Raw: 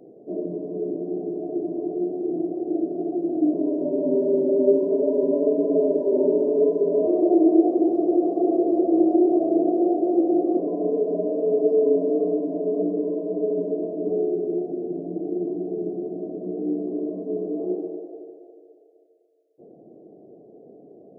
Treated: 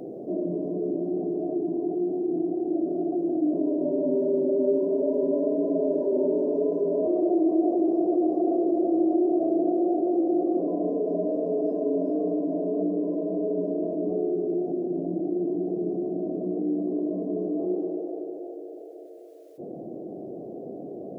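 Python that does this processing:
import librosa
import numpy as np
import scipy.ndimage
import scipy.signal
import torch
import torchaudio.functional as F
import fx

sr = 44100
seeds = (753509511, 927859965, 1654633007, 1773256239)

y = fx.notch_comb(x, sr, f0_hz=580.0, at=(1.58, 2.72))
y = fx.echo_throw(y, sr, start_s=7.07, length_s=0.82, ms=420, feedback_pct=65, wet_db=-7.5)
y = fx.notch(y, sr, hz=440.0, q=12.0)
y = fx.env_flatten(y, sr, amount_pct=50)
y = F.gain(torch.from_numpy(y), -7.0).numpy()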